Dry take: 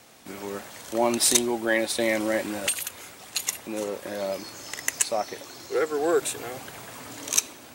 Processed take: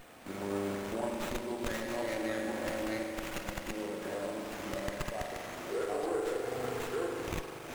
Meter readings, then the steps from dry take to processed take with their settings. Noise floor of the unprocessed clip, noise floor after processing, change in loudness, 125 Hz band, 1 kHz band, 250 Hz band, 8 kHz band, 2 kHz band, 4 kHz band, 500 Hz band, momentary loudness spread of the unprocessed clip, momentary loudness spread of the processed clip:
−47 dBFS, −45 dBFS, −10.5 dB, +1.0 dB, −6.5 dB, −6.5 dB, −21.5 dB, −9.0 dB, −14.0 dB, −7.0 dB, 16 LU, 5 LU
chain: delay that plays each chunk backwards 505 ms, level −1 dB
downward compressor 4 to 1, threshold −34 dBFS, peak gain reduction 16.5 dB
steady tone 8,500 Hz −46 dBFS
spring reverb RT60 2.3 s, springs 40 ms, chirp 55 ms, DRR −0.5 dB
windowed peak hold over 9 samples
level −2 dB

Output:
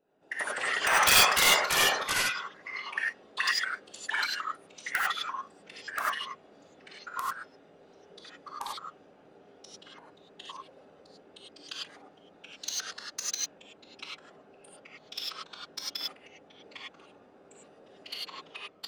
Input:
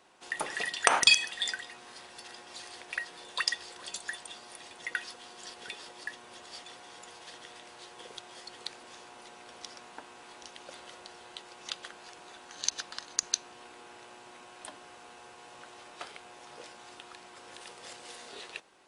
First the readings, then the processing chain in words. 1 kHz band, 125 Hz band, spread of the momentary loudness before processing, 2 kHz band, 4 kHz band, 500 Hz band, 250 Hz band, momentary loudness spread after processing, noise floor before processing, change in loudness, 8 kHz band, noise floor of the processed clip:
+6.5 dB, +9.0 dB, 19 LU, +5.5 dB, +3.0 dB, +5.0 dB, +3.5 dB, 24 LU, −52 dBFS, +3.5 dB, +3.0 dB, −58 dBFS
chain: adaptive Wiener filter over 41 samples
high-pass filter 300 Hz 12 dB per octave
dynamic equaliser 2,100 Hz, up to +7 dB, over −48 dBFS, Q 0.75
soft clipping −12 dBFS, distortion −10 dB
random phases in short frames
wrap-around overflow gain 10.5 dB
delay with pitch and tempo change per echo 95 ms, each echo −3 semitones, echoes 3
reverb whose tail is shaped and stops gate 120 ms rising, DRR −4 dB
level −5 dB

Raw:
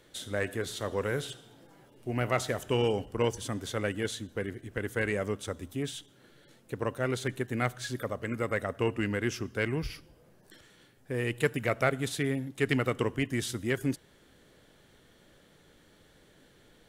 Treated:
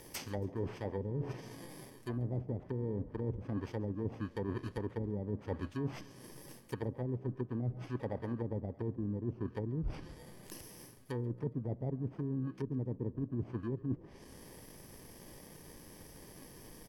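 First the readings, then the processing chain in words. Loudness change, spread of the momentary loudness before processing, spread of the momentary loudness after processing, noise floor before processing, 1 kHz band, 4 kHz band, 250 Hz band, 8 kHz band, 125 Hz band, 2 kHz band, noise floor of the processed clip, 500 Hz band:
−7.5 dB, 9 LU, 15 LU, −61 dBFS, −12.0 dB, −16.5 dB, −4.5 dB, −12.0 dB, −2.5 dB, −20.0 dB, −56 dBFS, −9.5 dB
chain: samples in bit-reversed order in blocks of 32 samples
treble cut that deepens with the level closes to 320 Hz, closed at −27 dBFS
reversed playback
downward compressor 12 to 1, threshold −41 dBFS, peak gain reduction 15.5 dB
reversed playback
echo with shifted repeats 138 ms, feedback 47%, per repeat +60 Hz, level −23 dB
level +8 dB

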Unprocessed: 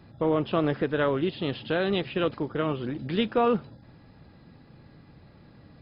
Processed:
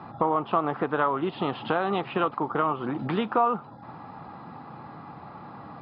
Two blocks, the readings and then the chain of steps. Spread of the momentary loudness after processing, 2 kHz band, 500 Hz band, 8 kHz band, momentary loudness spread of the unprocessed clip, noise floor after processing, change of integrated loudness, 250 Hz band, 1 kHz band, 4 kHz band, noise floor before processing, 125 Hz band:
18 LU, 0.0 dB, −2.0 dB, can't be measured, 5 LU, −45 dBFS, +0.5 dB, −2.0 dB, +7.5 dB, −5.0 dB, −54 dBFS, −3.5 dB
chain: flat-topped bell 980 Hz +13.5 dB 1.1 octaves
downward compressor 3 to 1, threshold −34 dBFS, peak gain reduction 17.5 dB
band-pass filter 150–2,800 Hz
level +8.5 dB

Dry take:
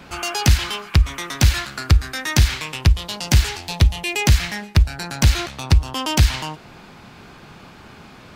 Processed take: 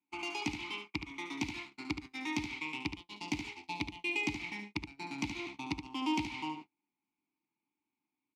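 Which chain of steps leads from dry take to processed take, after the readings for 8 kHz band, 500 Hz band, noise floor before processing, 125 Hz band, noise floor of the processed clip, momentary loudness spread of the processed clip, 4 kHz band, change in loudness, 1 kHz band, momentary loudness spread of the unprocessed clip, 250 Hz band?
−24.0 dB, −16.0 dB, −44 dBFS, −31.0 dB, below −85 dBFS, 8 LU, −18.0 dB, −19.0 dB, −13.0 dB, 6 LU, −10.0 dB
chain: notch filter 820 Hz, Q 20
downward compressor 8 to 1, threshold −18 dBFS, peak gain reduction 10.5 dB
formant filter u
high-shelf EQ 12,000 Hz −9 dB
on a send: repeating echo 73 ms, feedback 23%, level −8 dB
on the sum: noise gate −46 dBFS, range −37 dB
high-shelf EQ 2,900 Hz +12 dB

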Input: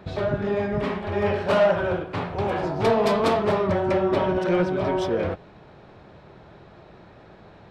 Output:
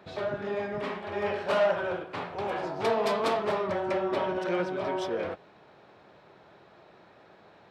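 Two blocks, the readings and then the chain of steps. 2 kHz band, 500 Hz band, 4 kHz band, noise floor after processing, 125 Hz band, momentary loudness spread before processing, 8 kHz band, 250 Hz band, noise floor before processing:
−4.5 dB, −6.5 dB, −4.0 dB, −57 dBFS, −14.0 dB, 7 LU, can't be measured, −9.5 dB, −49 dBFS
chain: high-pass filter 430 Hz 6 dB per octave
level −4 dB

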